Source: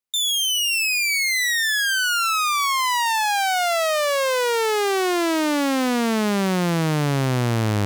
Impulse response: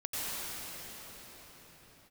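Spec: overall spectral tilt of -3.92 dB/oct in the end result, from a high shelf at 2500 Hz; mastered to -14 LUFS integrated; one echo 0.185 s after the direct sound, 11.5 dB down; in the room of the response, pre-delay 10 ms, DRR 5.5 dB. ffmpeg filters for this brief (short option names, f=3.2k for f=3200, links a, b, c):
-filter_complex "[0:a]highshelf=f=2.5k:g=-4,aecho=1:1:185:0.266,asplit=2[a][b];[1:a]atrim=start_sample=2205,adelay=10[c];[b][c]afir=irnorm=-1:irlink=0,volume=-12.5dB[d];[a][d]amix=inputs=2:normalize=0,volume=6dB"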